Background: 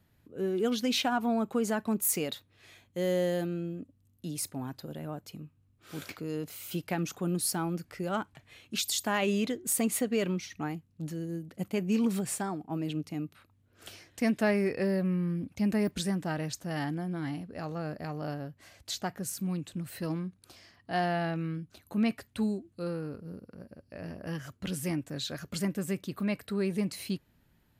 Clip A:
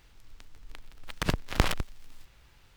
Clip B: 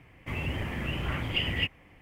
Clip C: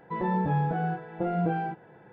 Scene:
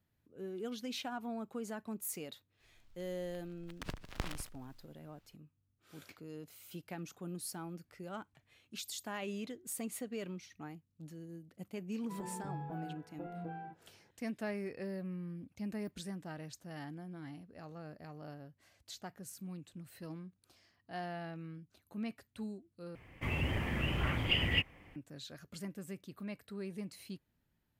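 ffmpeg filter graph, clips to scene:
ffmpeg -i bed.wav -i cue0.wav -i cue1.wav -i cue2.wav -filter_complex "[0:a]volume=-12.5dB[link_01];[1:a]aecho=1:1:151:0.224[link_02];[3:a]asplit=2[link_03][link_04];[link_04]adelay=19,volume=-11.5dB[link_05];[link_03][link_05]amix=inputs=2:normalize=0[link_06];[link_01]asplit=2[link_07][link_08];[link_07]atrim=end=22.954[link_09];[2:a]atrim=end=2.01,asetpts=PTS-STARTPTS,volume=-2dB[link_10];[link_08]atrim=start=24.956[link_11];[link_02]atrim=end=2.76,asetpts=PTS-STARTPTS,volume=-15dB,afade=type=in:duration=0.004:curve=hsin,afade=type=out:start_time=2.756:duration=0.004:curve=hsin,adelay=2600[link_12];[link_06]atrim=end=2.12,asetpts=PTS-STARTPTS,volume=-17dB,afade=type=in:duration=0.004:curve=hsin,afade=type=out:start_time=2.116:duration=0.004:curve=hsin,adelay=11990[link_13];[link_09][link_10]acrossfade=duration=0.004:curve1=hsin:curve2=hsin[link_14];[link_14][link_11]acrossfade=duration=0.004:curve1=hsin:curve2=hsin[link_15];[link_15][link_12][link_13]amix=inputs=3:normalize=0" out.wav

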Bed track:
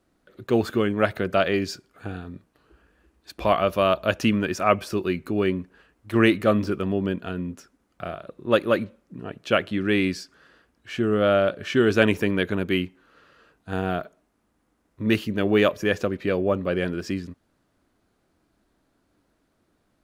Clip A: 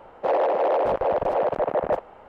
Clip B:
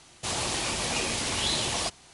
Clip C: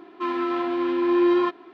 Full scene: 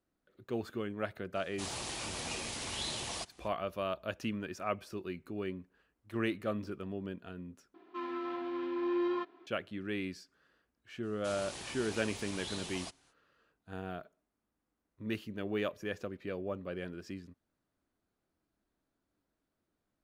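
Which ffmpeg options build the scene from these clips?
ffmpeg -i bed.wav -i cue0.wav -i cue1.wav -i cue2.wav -filter_complex "[2:a]asplit=2[link_01][link_02];[0:a]volume=-15.5dB,asplit=2[link_03][link_04];[link_03]atrim=end=7.744[link_05];[3:a]atrim=end=1.73,asetpts=PTS-STARTPTS,volume=-13dB[link_06];[link_04]atrim=start=9.466[link_07];[link_01]atrim=end=2.13,asetpts=PTS-STARTPTS,volume=-10.5dB,afade=type=in:duration=0.004:curve=hsin,afade=type=out:start_time=2.126:duration=0.004:curve=hsin,adelay=1350[link_08];[link_02]atrim=end=2.13,asetpts=PTS-STARTPTS,volume=-15.5dB,afade=type=in:duration=0.05,afade=type=out:start_time=2.08:duration=0.05,adelay=11010[link_09];[link_05][link_06]acrossfade=duration=0.004:curve1=hsin:curve2=hsin[link_10];[link_10][link_07]acrossfade=duration=0.004:curve1=hsin:curve2=hsin[link_11];[link_11][link_08][link_09]amix=inputs=3:normalize=0" out.wav

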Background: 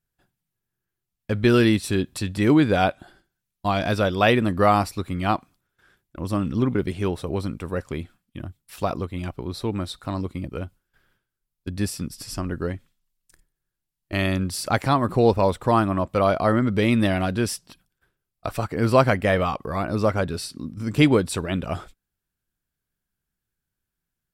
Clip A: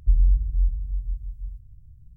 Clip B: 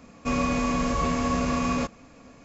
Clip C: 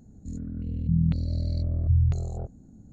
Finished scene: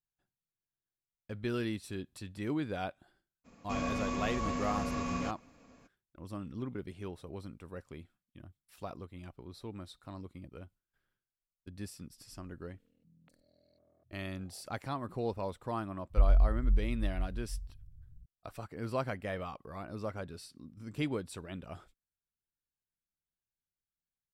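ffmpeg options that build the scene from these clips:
ffmpeg -i bed.wav -i cue0.wav -i cue1.wav -i cue2.wav -filter_complex "[0:a]volume=-17.5dB[link_01];[3:a]highpass=700,lowpass=2400[link_02];[2:a]atrim=end=2.44,asetpts=PTS-STARTPTS,volume=-10dB,afade=type=in:duration=0.02,afade=type=out:start_time=2.42:duration=0.02,adelay=3440[link_03];[link_02]atrim=end=2.92,asetpts=PTS-STARTPTS,volume=-17.5dB,afade=type=in:duration=0.004:curve=hsin,afade=type=out:start_time=2.916:duration=0.004:curve=hsin,adelay=12160[link_04];[1:a]atrim=end=2.16,asetpts=PTS-STARTPTS,volume=-6dB,afade=type=in:duration=0.004:curve=hsin,afade=type=out:start_time=2.156:duration=0.004:curve=hsin,adelay=16100[link_05];[link_01][link_03][link_04][link_05]amix=inputs=4:normalize=0" out.wav

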